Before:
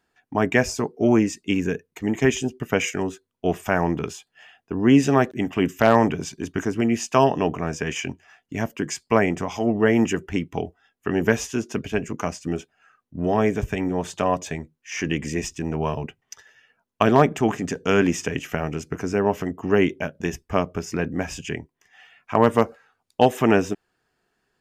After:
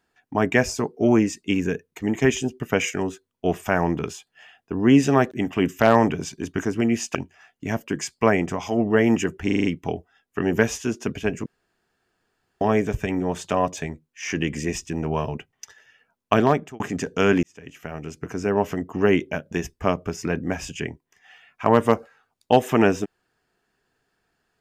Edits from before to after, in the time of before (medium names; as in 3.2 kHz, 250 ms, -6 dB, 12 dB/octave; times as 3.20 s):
7.15–8.04 s: delete
10.34 s: stutter 0.04 s, 6 plays
12.15–13.30 s: room tone
17.06–17.49 s: fade out
18.12–19.32 s: fade in